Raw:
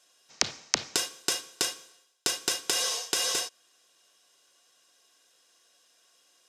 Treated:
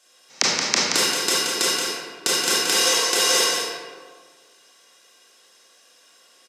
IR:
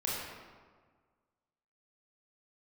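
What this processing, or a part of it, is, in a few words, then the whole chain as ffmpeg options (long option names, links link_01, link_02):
PA in a hall: -filter_complex "[0:a]highpass=frequency=140:width=0.5412,highpass=frequency=140:width=1.3066,equalizer=frequency=2000:width_type=o:width=0.25:gain=3,aecho=1:1:176:0.501[link_01];[1:a]atrim=start_sample=2205[link_02];[link_01][link_02]afir=irnorm=-1:irlink=0,volume=5dB"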